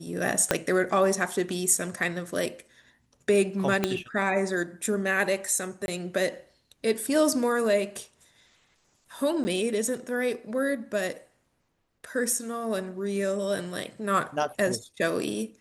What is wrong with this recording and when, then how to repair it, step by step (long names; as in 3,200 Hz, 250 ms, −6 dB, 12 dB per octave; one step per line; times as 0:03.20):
0:00.51: click −6 dBFS
0:03.84: click −9 dBFS
0:05.86–0:05.88: drop-out 21 ms
0:09.44–0:09.45: drop-out 10 ms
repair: click removal
repair the gap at 0:05.86, 21 ms
repair the gap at 0:09.44, 10 ms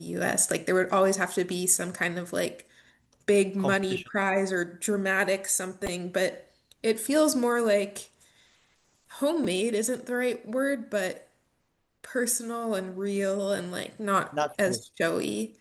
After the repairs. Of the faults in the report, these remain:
0:00.51: click
0:03.84: click